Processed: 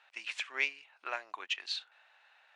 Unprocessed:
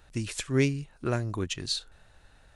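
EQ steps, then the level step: ladder high-pass 660 Hz, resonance 40%; distance through air 100 m; peaking EQ 2.5 kHz +13 dB 1.3 oct; 0.0 dB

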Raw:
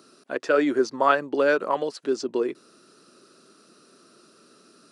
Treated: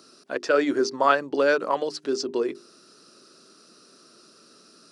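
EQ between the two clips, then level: peaking EQ 5.2 kHz +7 dB 0.72 oct; hum notches 50/100/150/200/250/300/350/400 Hz; 0.0 dB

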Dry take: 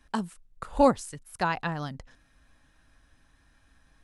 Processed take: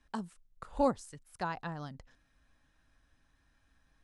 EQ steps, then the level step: low-pass 9.4 kHz 12 dB/octave; dynamic bell 2.5 kHz, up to -6 dB, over -46 dBFS, Q 1.3; -8.0 dB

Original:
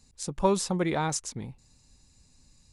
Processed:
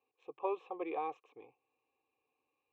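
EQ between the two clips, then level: vowel filter a; cabinet simulation 140–4000 Hz, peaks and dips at 320 Hz +6 dB, 460 Hz +9 dB, 1.7 kHz +4 dB; static phaser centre 970 Hz, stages 8; +2.5 dB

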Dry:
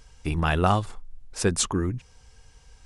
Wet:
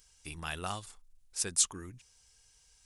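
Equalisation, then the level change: pre-emphasis filter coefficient 0.9; 0.0 dB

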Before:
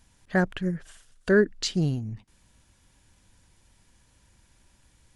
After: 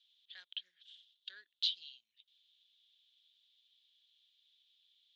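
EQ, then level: Butterworth band-pass 3.5 kHz, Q 4.4; +5.5 dB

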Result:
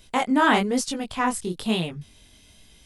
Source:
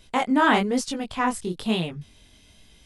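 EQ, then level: treble shelf 7.3 kHz +6.5 dB; 0.0 dB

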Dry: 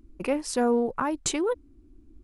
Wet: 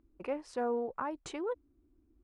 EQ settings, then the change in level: band-pass filter 340 Hz, Q 0.53; peaking EQ 220 Hz -13.5 dB 2.7 oct; 0.0 dB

